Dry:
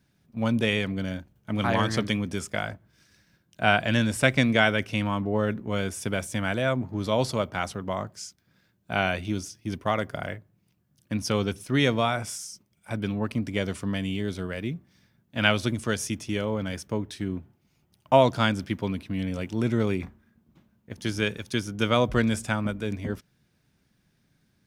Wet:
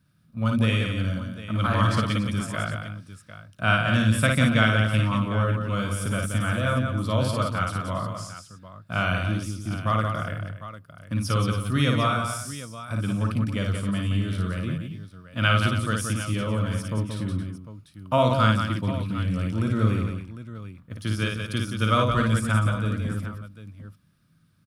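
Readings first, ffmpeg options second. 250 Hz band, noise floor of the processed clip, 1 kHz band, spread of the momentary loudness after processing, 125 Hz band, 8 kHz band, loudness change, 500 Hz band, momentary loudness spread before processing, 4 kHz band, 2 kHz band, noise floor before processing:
+1.0 dB, -58 dBFS, +2.0 dB, 17 LU, +7.0 dB, +0.5 dB, +2.0 dB, -2.5 dB, 13 LU, 0.0 dB, +1.0 dB, -69 dBFS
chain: -af "equalizer=f=100:t=o:w=0.33:g=10,equalizer=f=160:t=o:w=0.33:g=6,equalizer=f=400:t=o:w=0.33:g=-9,equalizer=f=800:t=o:w=0.33:g=-10,equalizer=f=1250:t=o:w=0.33:g=10,equalizer=f=2000:t=o:w=0.33:g=-5,equalizer=f=6300:t=o:w=0.33:g=-6,equalizer=f=10000:t=o:w=0.33:g=5,aecho=1:1:55|177|279|751:0.668|0.501|0.237|0.211,volume=0.794"

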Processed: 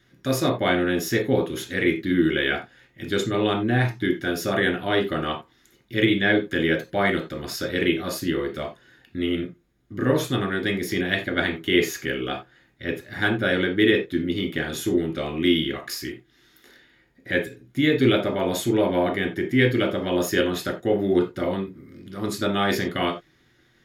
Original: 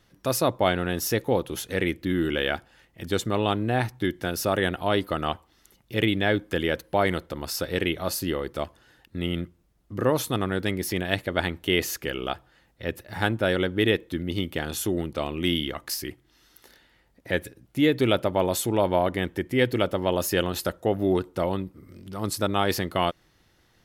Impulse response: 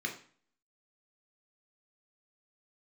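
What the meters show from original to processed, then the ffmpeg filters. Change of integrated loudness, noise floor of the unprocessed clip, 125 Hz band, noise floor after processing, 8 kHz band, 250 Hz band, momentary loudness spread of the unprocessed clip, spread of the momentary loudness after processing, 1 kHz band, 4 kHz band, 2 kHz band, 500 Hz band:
+2.5 dB, -64 dBFS, +1.5 dB, -61 dBFS, -2.5 dB, +4.5 dB, 9 LU, 11 LU, -1.0 dB, +2.0 dB, +5.0 dB, +2.0 dB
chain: -filter_complex "[1:a]atrim=start_sample=2205,atrim=end_sample=4410[s0];[0:a][s0]afir=irnorm=-1:irlink=0,volume=0.891"

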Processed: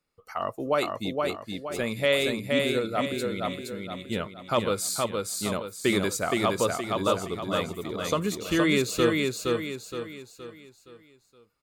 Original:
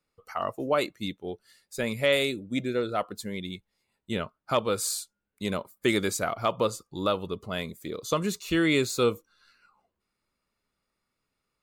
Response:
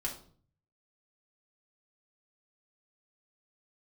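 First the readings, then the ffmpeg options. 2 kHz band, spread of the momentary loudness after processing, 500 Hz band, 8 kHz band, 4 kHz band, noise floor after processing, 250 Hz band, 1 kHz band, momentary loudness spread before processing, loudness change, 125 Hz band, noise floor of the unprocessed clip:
+2.0 dB, 12 LU, +2.0 dB, +2.0 dB, +2.0 dB, -62 dBFS, +2.0 dB, +2.0 dB, 13 LU, +1.0 dB, +2.0 dB, -83 dBFS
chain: -af "aecho=1:1:469|938|1407|1876|2345:0.708|0.29|0.119|0.0488|0.02"

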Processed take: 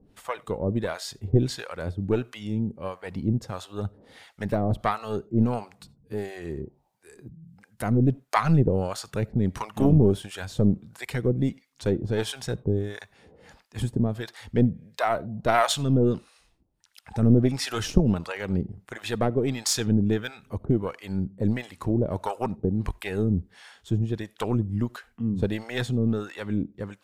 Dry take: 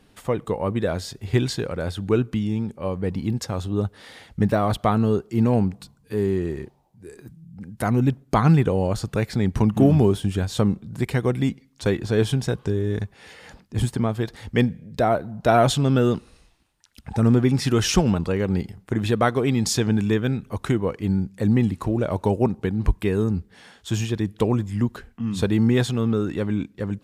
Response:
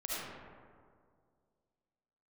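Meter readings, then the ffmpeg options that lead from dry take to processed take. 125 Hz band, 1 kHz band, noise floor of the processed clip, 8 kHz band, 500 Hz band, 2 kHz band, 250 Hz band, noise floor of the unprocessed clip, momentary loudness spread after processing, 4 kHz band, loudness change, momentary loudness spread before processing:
-3.5 dB, -3.5 dB, -65 dBFS, -2.5 dB, -4.5 dB, -3.0 dB, -4.0 dB, -58 dBFS, 13 LU, -3.0 dB, -4.0 dB, 10 LU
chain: -filter_complex "[0:a]aeval=exprs='0.531*(cos(1*acos(clip(val(0)/0.531,-1,1)))-cos(1*PI/2))+0.188*(cos(2*acos(clip(val(0)/0.531,-1,1)))-cos(2*PI/2))':c=same,acrossover=split=640[s0][s1];[s0]aeval=exprs='val(0)*(1-1/2+1/2*cos(2*PI*1.5*n/s))':c=same[s2];[s1]aeval=exprs='val(0)*(1-1/2-1/2*cos(2*PI*1.5*n/s))':c=same[s3];[s2][s3]amix=inputs=2:normalize=0,asplit=2[s4][s5];[1:a]atrim=start_sample=2205,atrim=end_sample=4410[s6];[s5][s6]afir=irnorm=-1:irlink=0,volume=0.0708[s7];[s4][s7]amix=inputs=2:normalize=0"

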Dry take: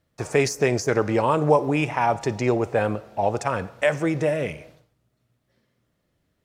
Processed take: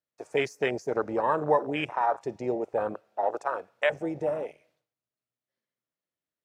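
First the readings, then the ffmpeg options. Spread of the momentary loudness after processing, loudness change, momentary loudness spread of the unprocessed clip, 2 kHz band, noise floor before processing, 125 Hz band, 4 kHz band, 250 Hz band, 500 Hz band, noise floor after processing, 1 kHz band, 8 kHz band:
7 LU, -6.0 dB, 7 LU, -5.5 dB, -73 dBFS, -16.0 dB, -5.5 dB, -9.0 dB, -6.0 dB, under -85 dBFS, -4.0 dB, under -15 dB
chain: -af "highpass=f=570:p=1,afwtdn=0.0501,volume=0.794"

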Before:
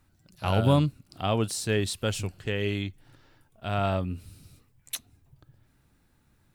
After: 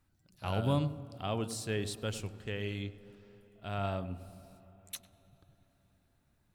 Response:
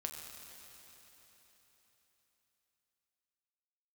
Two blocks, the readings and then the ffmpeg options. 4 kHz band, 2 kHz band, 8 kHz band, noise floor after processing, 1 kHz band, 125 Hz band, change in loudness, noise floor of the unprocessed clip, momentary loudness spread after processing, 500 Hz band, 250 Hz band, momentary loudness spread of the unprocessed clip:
-8.5 dB, -8.5 dB, -8.5 dB, -73 dBFS, -8.0 dB, -8.0 dB, -8.5 dB, -66 dBFS, 16 LU, -8.5 dB, -8.0 dB, 14 LU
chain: -filter_complex "[0:a]asplit=2[s0][s1];[s1]tiltshelf=f=1200:g=4.5[s2];[1:a]atrim=start_sample=2205,highshelf=f=5600:g=-11.5,adelay=100[s3];[s2][s3]afir=irnorm=-1:irlink=0,volume=0.237[s4];[s0][s4]amix=inputs=2:normalize=0,volume=0.376"

